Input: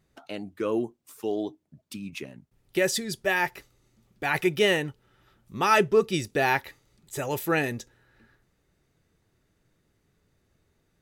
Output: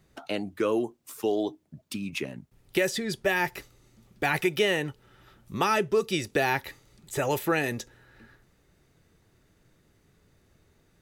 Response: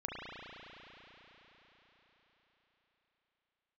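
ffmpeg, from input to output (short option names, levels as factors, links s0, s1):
-filter_complex "[0:a]acrossover=split=380|3400[s0][s1][s2];[s0]acompressor=threshold=0.0126:ratio=4[s3];[s1]acompressor=threshold=0.0282:ratio=4[s4];[s2]acompressor=threshold=0.00631:ratio=4[s5];[s3][s4][s5]amix=inputs=3:normalize=0,volume=2"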